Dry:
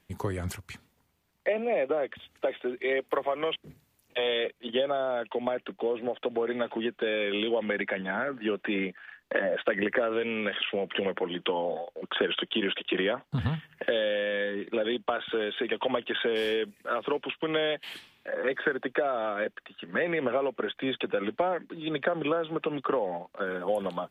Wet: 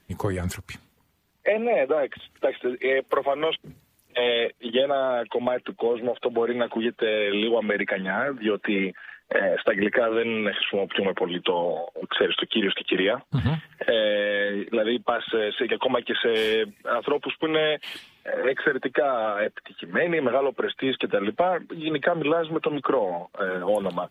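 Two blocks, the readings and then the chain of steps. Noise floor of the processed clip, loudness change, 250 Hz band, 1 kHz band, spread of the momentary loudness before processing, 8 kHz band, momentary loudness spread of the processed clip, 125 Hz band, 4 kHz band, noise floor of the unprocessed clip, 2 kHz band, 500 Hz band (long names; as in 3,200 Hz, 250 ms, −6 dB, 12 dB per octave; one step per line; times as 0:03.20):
−65 dBFS, +5.0 dB, +5.0 dB, +5.0 dB, 6 LU, can't be measured, 6 LU, +5.0 dB, +5.0 dB, −71 dBFS, +5.0 dB, +5.0 dB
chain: spectral magnitudes quantised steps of 15 dB
level +5.5 dB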